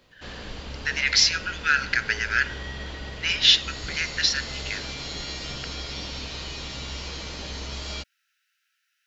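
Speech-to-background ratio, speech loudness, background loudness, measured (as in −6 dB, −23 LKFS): 12.5 dB, −22.0 LKFS, −34.5 LKFS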